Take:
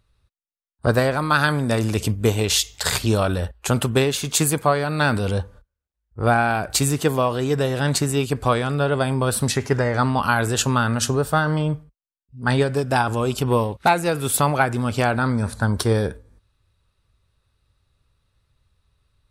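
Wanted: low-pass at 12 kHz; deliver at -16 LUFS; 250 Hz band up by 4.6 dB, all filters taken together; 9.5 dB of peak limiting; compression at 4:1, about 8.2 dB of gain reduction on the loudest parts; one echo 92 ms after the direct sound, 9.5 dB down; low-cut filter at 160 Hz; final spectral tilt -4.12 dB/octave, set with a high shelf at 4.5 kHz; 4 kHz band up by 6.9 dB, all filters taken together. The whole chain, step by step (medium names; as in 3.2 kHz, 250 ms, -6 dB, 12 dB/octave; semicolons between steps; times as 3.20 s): high-pass 160 Hz; low-pass 12 kHz; peaking EQ 250 Hz +6.5 dB; peaking EQ 4 kHz +6 dB; treble shelf 4.5 kHz +4.5 dB; compression 4:1, threshold -21 dBFS; peak limiter -14.5 dBFS; delay 92 ms -9.5 dB; trim +10 dB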